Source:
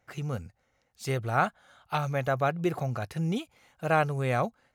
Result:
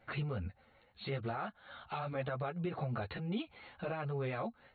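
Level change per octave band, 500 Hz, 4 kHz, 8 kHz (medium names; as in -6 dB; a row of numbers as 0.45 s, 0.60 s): -9.5 dB, -6.0 dB, under -30 dB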